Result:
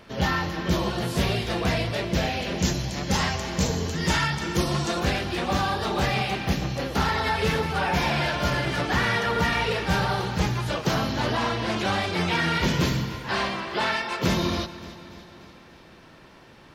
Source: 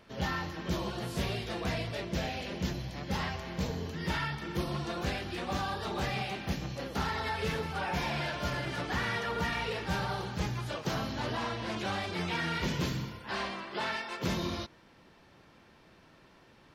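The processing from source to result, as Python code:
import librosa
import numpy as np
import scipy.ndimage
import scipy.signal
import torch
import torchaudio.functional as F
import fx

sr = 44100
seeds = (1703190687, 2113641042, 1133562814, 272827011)

y = fx.peak_eq(x, sr, hz=7100.0, db=11.5, octaves=0.82, at=(2.58, 5.0))
y = fx.echo_feedback(y, sr, ms=293, feedback_pct=57, wet_db=-16)
y = y * 10.0 ** (9.0 / 20.0)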